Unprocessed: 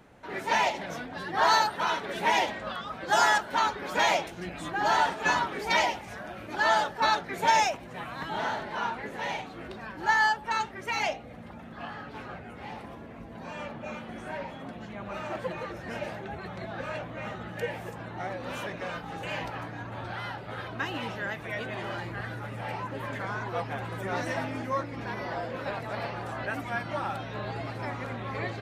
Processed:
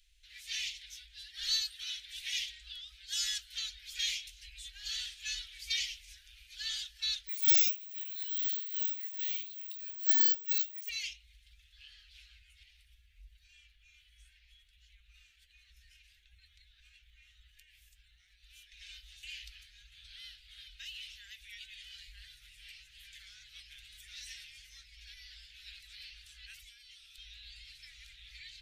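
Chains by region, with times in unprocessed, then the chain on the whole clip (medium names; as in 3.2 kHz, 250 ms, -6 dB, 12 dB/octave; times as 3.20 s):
7.27–10.89 s: careless resampling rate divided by 2×, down none, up zero stuff + brick-wall FIR high-pass 1.4 kHz
12.63–18.72 s: peaking EQ 5 kHz -7.5 dB 2.5 oct + compression, threshold -38 dBFS
26.63–27.18 s: amplifier tone stack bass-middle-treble 10-0-10 + compression 3:1, threshold -41 dBFS
whole clip: inverse Chebyshev band-stop 130–1100 Hz, stop band 60 dB; treble shelf 3.3 kHz -9.5 dB; trim +6.5 dB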